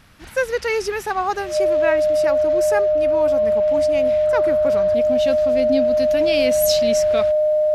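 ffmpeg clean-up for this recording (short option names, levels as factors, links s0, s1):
-af "bandreject=f=610:w=30"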